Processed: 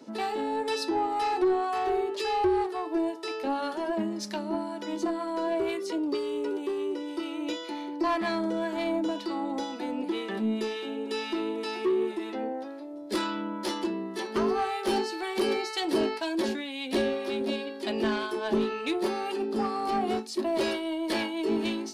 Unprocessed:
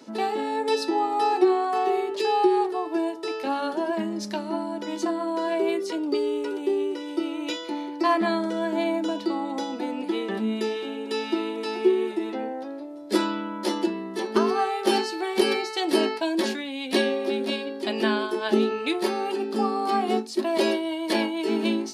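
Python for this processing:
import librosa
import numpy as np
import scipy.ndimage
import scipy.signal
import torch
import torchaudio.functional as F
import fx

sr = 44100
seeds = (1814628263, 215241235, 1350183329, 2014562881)

y = 10.0 ** (-18.5 / 20.0) * np.tanh(x / 10.0 ** (-18.5 / 20.0))
y = fx.harmonic_tremolo(y, sr, hz=2.0, depth_pct=50, crossover_hz=900.0)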